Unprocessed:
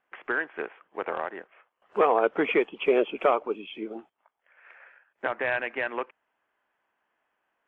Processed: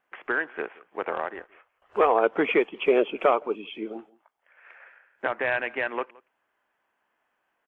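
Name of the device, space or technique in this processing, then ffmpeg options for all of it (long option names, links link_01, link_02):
ducked delay: -filter_complex "[0:a]asplit=3[link_01][link_02][link_03];[link_02]adelay=171,volume=-7dB[link_04];[link_03]apad=whole_len=345830[link_05];[link_04][link_05]sidechaincompress=threshold=-41dB:ratio=16:attack=16:release=1330[link_06];[link_01][link_06]amix=inputs=2:normalize=0,asettb=1/sr,asplit=3[link_07][link_08][link_09];[link_07]atrim=end=1.344[link_10];[link_08]atrim=start=1.34:end=2.16,asetpts=PTS-STARTPTS,afade=type=in:duration=0.004:curve=qsin,afade=type=out:start_time=0.816:duration=0.004:curve=qsin,lowshelf=frequency=120:width_type=q:width=3:gain=9.5[link_11];[link_09]atrim=start=2.156[link_12];[link_10][link_11]acrossfade=duration=0.004:curve1=hsin:curve2=qsin[link_13];[link_13][link_12]acrossfade=duration=0.004:curve1=qsin:curve2=hsin,volume=1.5dB"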